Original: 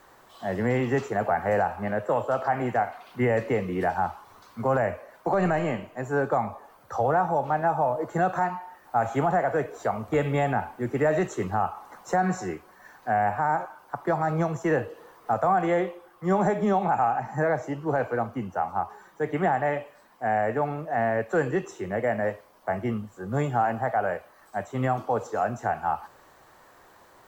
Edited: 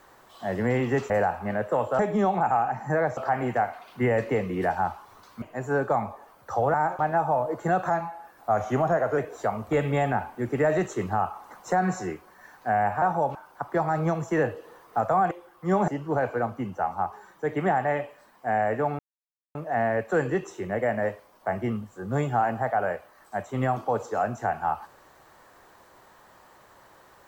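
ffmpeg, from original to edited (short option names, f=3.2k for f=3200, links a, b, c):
-filter_complex "[0:a]asplit=14[a][b][c][d][e][f][g][h][i][j][k][l][m][n];[a]atrim=end=1.102[o];[b]atrim=start=1.468:end=2.362[p];[c]atrim=start=16.468:end=17.652[q];[d]atrim=start=2.358:end=4.612[r];[e]atrim=start=5.838:end=7.162[s];[f]atrim=start=13.428:end=13.682[t];[g]atrim=start=7.488:end=8.404[u];[h]atrim=start=8.4:end=9.59,asetpts=PTS-STARTPTS,asetrate=41013,aresample=44100,atrim=end_sample=56429,asetpts=PTS-STARTPTS[v];[i]atrim=start=9.586:end=13.432[w];[j]atrim=start=7.158:end=7.492[x];[k]atrim=start=13.678:end=15.642[y];[l]atrim=start=15.898:end=16.472[z];[m]atrim=start=17.648:end=20.76,asetpts=PTS-STARTPTS,afade=t=out:st=3.108:d=0.004:c=hsin,apad=pad_dur=0.56[aa];[n]atrim=start=20.76,asetpts=PTS-STARTPTS,afade=t=in:d=0.004:c=hsin[ab];[o][p]acrossfade=d=0.004:c1=hsin:c2=hsin[ac];[ac][q]acrossfade=d=0.004:c1=hsin:c2=hsin[ad];[ad][r]acrossfade=d=0.004:c1=hsin:c2=hsin[ae];[ae][s]acrossfade=d=0.004:c1=hsin:c2=hsin[af];[af][t]acrossfade=d=0.004:c1=hsin:c2=hsin[ag];[ag][u]acrossfade=d=0.004:c1=hsin:c2=hsin[ah];[ah][v]acrossfade=d=0.004:c1=hsin:c2=hsin[ai];[ai][w]acrossfade=d=0.004:c1=hsin:c2=hsin[aj];[aj][x]acrossfade=d=0.004:c1=hsin:c2=hsin[ak];[ak][y]acrossfade=d=0.004:c1=hsin:c2=hsin[al];[al][z]acrossfade=d=0.004:c1=hsin:c2=hsin[am];[aa][ab]concat=n=2:v=0:a=1[an];[am][an]acrossfade=d=0.004:c1=hsin:c2=hsin"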